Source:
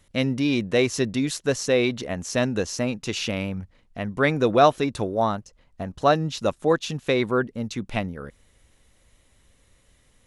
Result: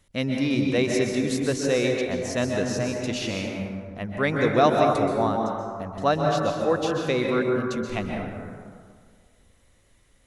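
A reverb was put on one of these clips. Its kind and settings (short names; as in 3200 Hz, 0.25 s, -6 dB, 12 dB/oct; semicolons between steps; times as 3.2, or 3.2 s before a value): plate-style reverb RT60 1.9 s, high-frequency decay 0.4×, pre-delay 0.115 s, DRR 0.5 dB; gain -3.5 dB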